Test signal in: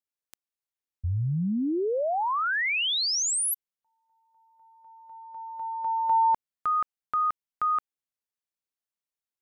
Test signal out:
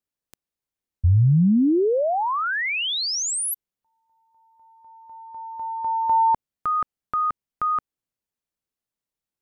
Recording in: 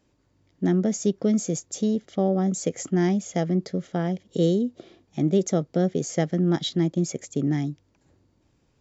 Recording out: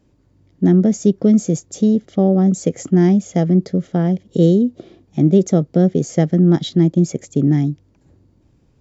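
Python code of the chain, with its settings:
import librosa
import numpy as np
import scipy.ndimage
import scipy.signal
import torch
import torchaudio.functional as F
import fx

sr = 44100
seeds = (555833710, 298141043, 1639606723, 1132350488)

y = fx.low_shelf(x, sr, hz=490.0, db=10.5)
y = F.gain(torch.from_numpy(y), 1.0).numpy()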